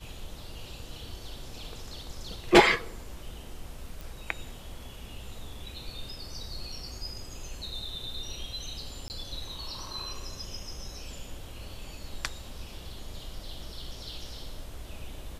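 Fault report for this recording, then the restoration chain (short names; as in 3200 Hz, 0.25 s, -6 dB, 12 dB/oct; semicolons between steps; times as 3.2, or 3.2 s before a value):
4.01 pop
9.08–9.1 gap 19 ms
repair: de-click; interpolate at 9.08, 19 ms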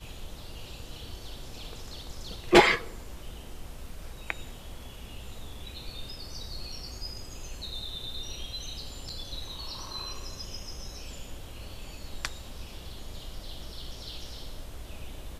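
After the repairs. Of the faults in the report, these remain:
none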